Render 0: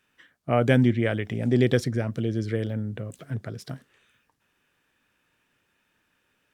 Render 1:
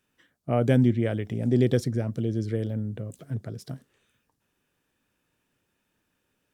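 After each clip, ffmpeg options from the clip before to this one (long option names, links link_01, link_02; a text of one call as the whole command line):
ffmpeg -i in.wav -af "equalizer=frequency=1900:width_type=o:width=2.4:gain=-8.5" out.wav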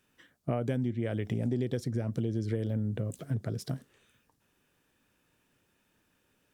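ffmpeg -i in.wav -af "acompressor=threshold=-30dB:ratio=10,volume=3dB" out.wav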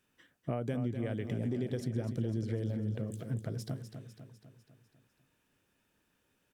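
ffmpeg -i in.wav -af "aecho=1:1:250|500|750|1000|1250|1500:0.355|0.195|0.107|0.059|0.0325|0.0179,volume=-4dB" out.wav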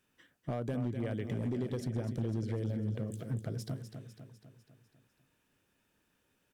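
ffmpeg -i in.wav -af "asoftclip=type=hard:threshold=-28dB" out.wav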